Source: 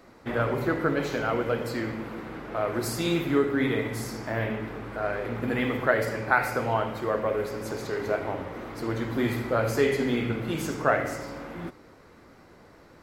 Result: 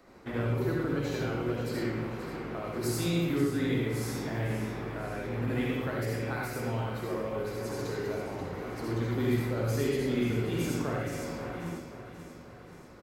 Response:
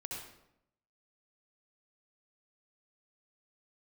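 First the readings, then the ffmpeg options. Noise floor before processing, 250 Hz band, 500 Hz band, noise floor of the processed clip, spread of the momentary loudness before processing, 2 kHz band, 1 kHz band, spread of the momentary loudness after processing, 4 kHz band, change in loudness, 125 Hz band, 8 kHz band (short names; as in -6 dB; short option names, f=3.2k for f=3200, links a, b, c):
-53 dBFS, -2.0 dB, -5.5 dB, -49 dBFS, 10 LU, -8.5 dB, -9.0 dB, 9 LU, -3.5 dB, -4.0 dB, +1.5 dB, -1.5 dB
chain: -filter_complex "[0:a]acrossover=split=350|3000[a][b][c];[b]acompressor=threshold=-35dB:ratio=6[d];[a][d][c]amix=inputs=3:normalize=0,aecho=1:1:533|1066|1599|2132|2665|3198:0.282|0.152|0.0822|0.0444|0.024|0.0129[e];[1:a]atrim=start_sample=2205,afade=t=out:st=0.18:d=0.01,atrim=end_sample=8379[f];[e][f]afir=irnorm=-1:irlink=0"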